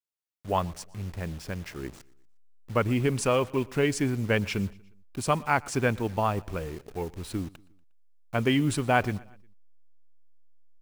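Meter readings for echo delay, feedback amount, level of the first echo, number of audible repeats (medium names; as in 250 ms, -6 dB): 119 ms, 50%, -24.0 dB, 2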